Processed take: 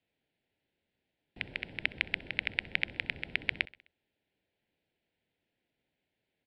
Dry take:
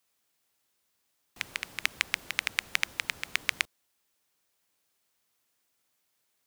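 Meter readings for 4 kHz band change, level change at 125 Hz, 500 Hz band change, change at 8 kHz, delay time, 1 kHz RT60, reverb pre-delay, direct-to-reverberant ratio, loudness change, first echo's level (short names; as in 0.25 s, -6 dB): -5.0 dB, +6.5 dB, +2.5 dB, under -30 dB, 64 ms, none, none, none, -3.0 dB, -22.0 dB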